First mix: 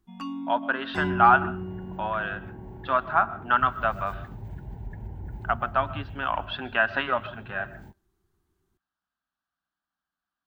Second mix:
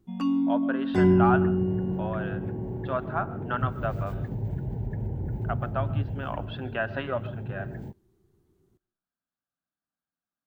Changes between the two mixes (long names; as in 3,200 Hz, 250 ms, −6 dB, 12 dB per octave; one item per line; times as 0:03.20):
speech −9.0 dB
first sound: send on
master: add octave-band graphic EQ 125/250/500/1,000 Hz +10/+5/+11/−3 dB